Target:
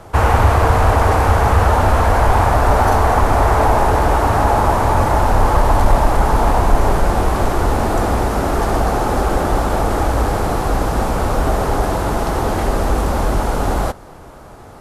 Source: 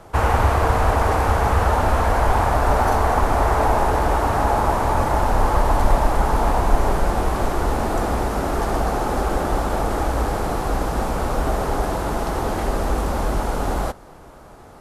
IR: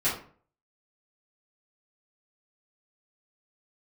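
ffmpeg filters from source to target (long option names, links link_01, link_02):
-filter_complex "[0:a]equalizer=frequency=100:width=2.9:gain=4.5,asplit=2[link_01][link_02];[link_02]acontrast=44,volume=1.5dB[link_03];[link_01][link_03]amix=inputs=2:normalize=0,volume=-5.5dB"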